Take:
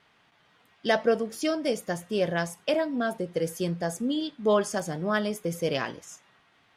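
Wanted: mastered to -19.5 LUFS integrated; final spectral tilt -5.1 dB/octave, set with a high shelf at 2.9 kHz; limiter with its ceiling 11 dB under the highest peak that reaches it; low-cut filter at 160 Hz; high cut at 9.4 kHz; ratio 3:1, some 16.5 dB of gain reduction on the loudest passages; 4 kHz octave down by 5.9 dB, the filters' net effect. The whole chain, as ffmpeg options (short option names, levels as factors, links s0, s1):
-af "highpass=160,lowpass=9400,highshelf=f=2900:g=-4.5,equalizer=f=4000:t=o:g=-4.5,acompressor=threshold=0.00794:ratio=3,volume=25.1,alimiter=limit=0.316:level=0:latency=1"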